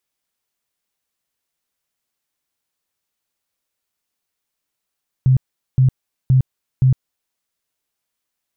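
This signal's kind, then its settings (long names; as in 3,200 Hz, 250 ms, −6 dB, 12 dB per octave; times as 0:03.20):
tone bursts 130 Hz, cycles 14, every 0.52 s, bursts 4, −9 dBFS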